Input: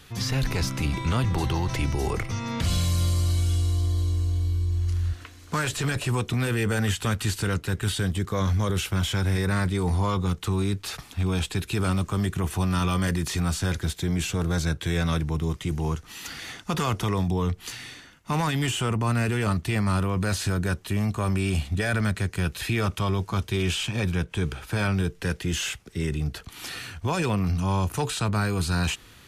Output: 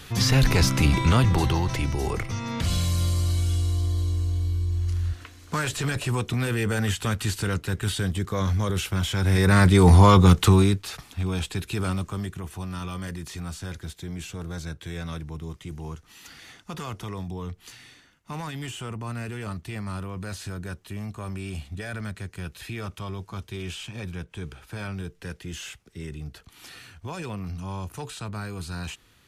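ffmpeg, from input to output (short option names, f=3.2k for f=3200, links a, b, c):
-af "volume=18dB,afade=t=out:st=0.94:d=0.88:silence=0.446684,afade=t=in:st=9.16:d=0.74:silence=0.266073,afade=t=out:st=10.44:d=0.4:silence=0.223872,afade=t=out:st=11.85:d=0.59:silence=0.446684"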